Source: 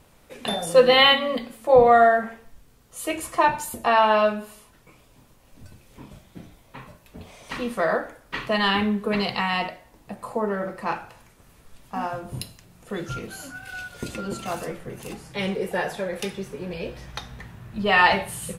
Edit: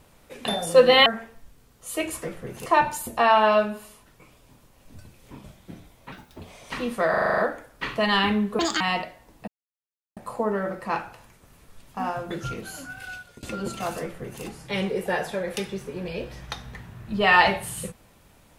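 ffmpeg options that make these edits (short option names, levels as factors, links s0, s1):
-filter_complex "[0:a]asplit=18[s0][s1][s2][s3][s4][s5][s6][s7][s8][s9][s10][s11][s12][s13][s14][s15][s16][s17];[s0]atrim=end=1.062[s18];[s1]atrim=start=2.158:end=3.332[s19];[s2]atrim=start=14.658:end=15.092[s20];[s3]atrim=start=3.328:end=6.794[s21];[s4]atrim=start=6.79:end=7.19,asetpts=PTS-STARTPTS,asetrate=63504,aresample=44100[s22];[s5]atrim=start=7.186:end=7.932[s23];[s6]atrim=start=7.888:end=7.932[s24];[s7]atrim=start=7.888:end=7.932[s25];[s8]atrim=start=7.888:end=7.932[s26];[s9]atrim=start=7.888:end=7.932[s27];[s10]atrim=start=7.888:end=7.932[s28];[s11]atrim=start=7.888:end=7.932[s29];[s12]atrim=start=7.888:end=9.104[s30];[s13]atrim=start=9.1:end=9.46,asetpts=PTS-STARTPTS,asetrate=72765,aresample=44100[s31];[s14]atrim=start=9.456:end=10.13,asetpts=PTS-STARTPTS,afade=t=out:st=0.67:d=0.004:c=hsin,apad=pad_dur=0.69[s32];[s15]atrim=start=10.13:end=12.272,asetpts=PTS-STARTPTS,afade=t=in:d=0.004:c=hsin[s33];[s16]atrim=start=12.958:end=14.08,asetpts=PTS-STARTPTS,afade=t=out:st=0.712:d=0.41:silence=0.0668344[s34];[s17]atrim=start=14.08,asetpts=PTS-STARTPTS,afade=t=in:d=0.004:c=hsin:silence=0.0668344[s35];[s18][s19]acrossfade=d=0.004:c1=hsin:c2=hsin[s36];[s36][s20]acrossfade=d=0.004:c1=hsin:c2=hsin[s37];[s37][s21]acrossfade=d=0.004:c1=hsin:c2=hsin[s38];[s38][s22]acrossfade=d=0.004:c1=hsin:c2=hsin[s39];[s39][s23]acrossfade=d=0.004:c1=hsin:c2=hsin[s40];[s40][s24]acrossfade=d=0.004:c1=hsin:c2=hsin[s41];[s41][s25]acrossfade=d=0.004:c1=hsin:c2=hsin[s42];[s42][s26]acrossfade=d=0.004:c1=hsin:c2=hsin[s43];[s43][s27]acrossfade=d=0.004:c1=hsin:c2=hsin[s44];[s44][s28]acrossfade=d=0.004:c1=hsin:c2=hsin[s45];[s45][s29]acrossfade=d=0.004:c1=hsin:c2=hsin[s46];[s46][s30]acrossfade=d=0.004:c1=hsin:c2=hsin[s47];[s47][s31]acrossfade=d=0.004:c1=hsin:c2=hsin[s48];[s32][s33]concat=n=2:v=0:a=1[s49];[s48][s49]acrossfade=d=0.004:c1=hsin:c2=hsin[s50];[s34][s35]concat=n=2:v=0:a=1[s51];[s50][s51]acrossfade=d=0.004:c1=hsin:c2=hsin"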